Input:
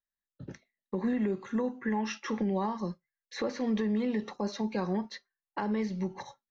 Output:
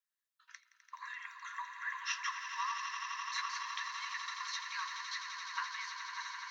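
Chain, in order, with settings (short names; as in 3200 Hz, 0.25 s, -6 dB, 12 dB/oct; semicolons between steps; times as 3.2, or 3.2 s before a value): brick-wall FIR high-pass 940 Hz; swelling echo 85 ms, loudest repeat 8, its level -11 dB; gain +1.5 dB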